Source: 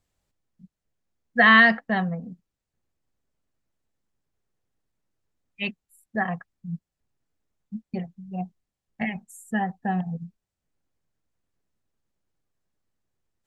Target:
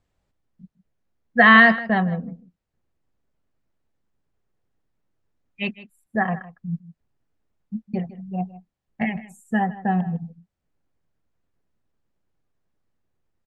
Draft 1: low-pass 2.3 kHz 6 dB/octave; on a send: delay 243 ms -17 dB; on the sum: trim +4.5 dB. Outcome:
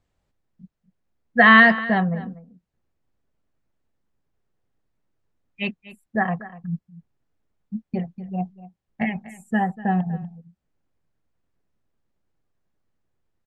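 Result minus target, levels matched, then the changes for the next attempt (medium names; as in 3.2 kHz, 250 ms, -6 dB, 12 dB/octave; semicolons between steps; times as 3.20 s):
echo 86 ms late
change: delay 157 ms -17 dB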